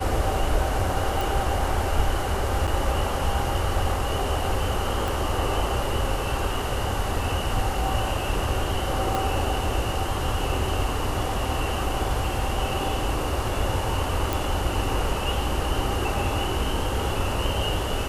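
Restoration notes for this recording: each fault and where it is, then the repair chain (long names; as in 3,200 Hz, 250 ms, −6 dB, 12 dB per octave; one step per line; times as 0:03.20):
0:01.21: click
0:02.67–0:02.68: drop-out 7.1 ms
0:05.08: click
0:09.15: click
0:14.33: click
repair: click removal
repair the gap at 0:02.67, 7.1 ms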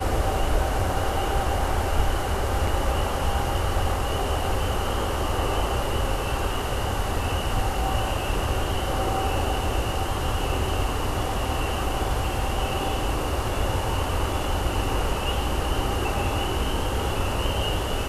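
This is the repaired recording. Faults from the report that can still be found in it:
0:05.08: click
0:09.15: click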